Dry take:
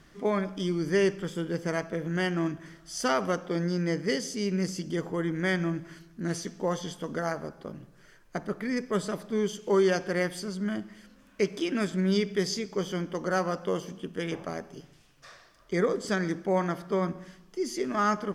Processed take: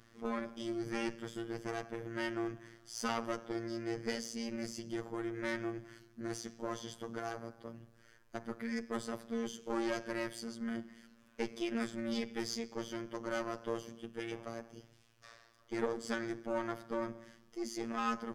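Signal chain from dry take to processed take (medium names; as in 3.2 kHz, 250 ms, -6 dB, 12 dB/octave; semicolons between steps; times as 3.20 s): single-diode clipper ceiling -28 dBFS; robot voice 115 Hz; trim -4.5 dB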